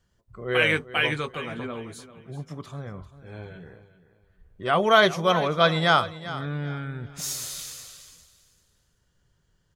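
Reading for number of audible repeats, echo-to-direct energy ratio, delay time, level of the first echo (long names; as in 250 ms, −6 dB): 2, −14.5 dB, 393 ms, −15.0 dB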